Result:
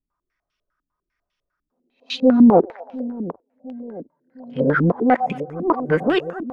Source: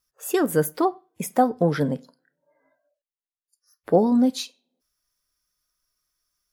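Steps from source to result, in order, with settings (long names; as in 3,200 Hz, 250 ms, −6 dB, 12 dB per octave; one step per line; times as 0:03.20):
played backwards from end to start
in parallel at −9 dB: gain into a clipping stage and back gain 21.5 dB
on the sum: echo with a time of its own for lows and highs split 670 Hz, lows 708 ms, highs 118 ms, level −12.5 dB
low-pass on a step sequencer 10 Hz 260–2,900 Hz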